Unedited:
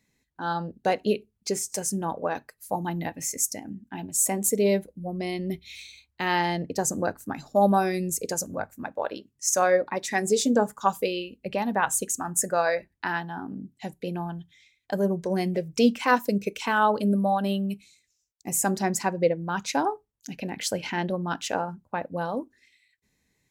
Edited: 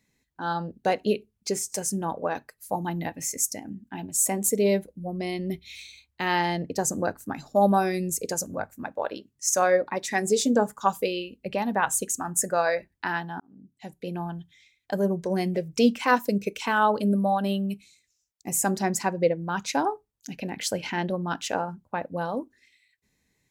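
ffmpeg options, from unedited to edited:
ffmpeg -i in.wav -filter_complex "[0:a]asplit=2[link_01][link_02];[link_01]atrim=end=13.4,asetpts=PTS-STARTPTS,afade=type=out:start_time=13.396:duration=0.004:curve=hsin[link_03];[link_02]atrim=start=13.4,asetpts=PTS-STARTPTS,afade=type=in:duration=0.84[link_04];[link_03][link_04]concat=n=2:v=0:a=1" out.wav

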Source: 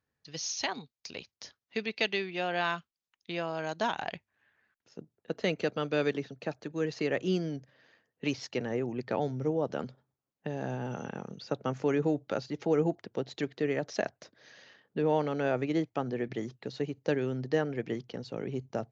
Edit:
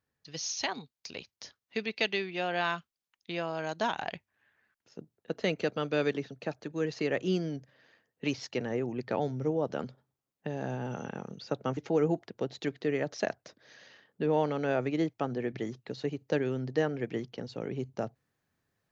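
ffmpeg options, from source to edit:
ffmpeg -i in.wav -filter_complex "[0:a]asplit=2[link_01][link_02];[link_01]atrim=end=11.772[link_03];[link_02]atrim=start=12.528[link_04];[link_03][link_04]acrossfade=duration=0.004:curve1=hsin:curve2=hsin" out.wav

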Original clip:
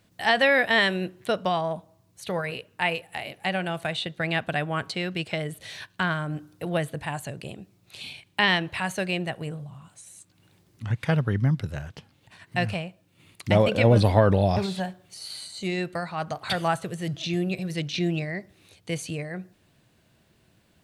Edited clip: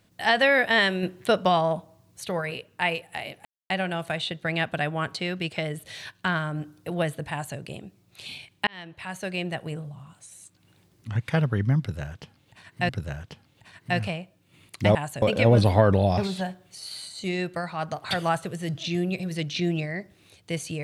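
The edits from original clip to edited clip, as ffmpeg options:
ffmpeg -i in.wav -filter_complex "[0:a]asplit=8[link_01][link_02][link_03][link_04][link_05][link_06][link_07][link_08];[link_01]atrim=end=1.032[link_09];[link_02]atrim=start=1.028:end=2.252,asetpts=PTS-STARTPTS,volume=4dB[link_10];[link_03]atrim=start=2.248:end=3.45,asetpts=PTS-STARTPTS,afade=type=out:start_time=1.198:duration=0.004:curve=hsin,apad=pad_dur=0.25[link_11];[link_04]atrim=start=3.45:end=8.42,asetpts=PTS-STARTPTS,afade=type=in:duration=0.004:curve=hsin,afade=type=out:start_time=4.966:duration=0.004:curve=hsin[link_12];[link_05]atrim=start=8.42:end=12.642,asetpts=PTS-STARTPTS,afade=type=in:duration=0.93[link_13];[link_06]atrim=start=11.548:end=13.612[link_14];[link_07]atrim=start=7.058:end=7.332[link_15];[link_08]atrim=start=13.608[link_16];[link_09][link_10]acrossfade=duration=0.004:curve1=hsin:curve2=hsin[link_17];[link_11][link_12][link_13]concat=n=3:v=0:a=1[link_18];[link_17][link_18]acrossfade=duration=0.004:curve1=hsin:curve2=hsin[link_19];[link_19][link_14]acrossfade=duration=0.004:curve1=hsin:curve2=hsin[link_20];[link_20][link_15]acrossfade=duration=0.004:curve1=hsin:curve2=hsin[link_21];[link_21][link_16]acrossfade=duration=0.004:curve1=hsin:curve2=hsin" out.wav

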